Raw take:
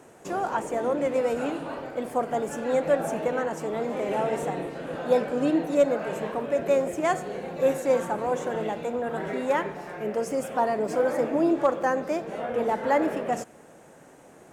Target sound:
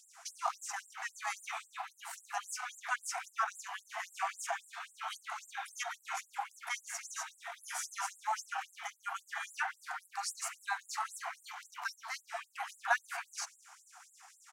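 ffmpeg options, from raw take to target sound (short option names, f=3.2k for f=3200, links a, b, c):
-af "asetrate=38170,aresample=44100,atempo=1.15535,afftfilt=real='re*gte(b*sr/1024,650*pow(7400/650,0.5+0.5*sin(2*PI*3.7*pts/sr)))':imag='im*gte(b*sr/1024,650*pow(7400/650,0.5+0.5*sin(2*PI*3.7*pts/sr)))':win_size=1024:overlap=0.75,volume=3.5dB"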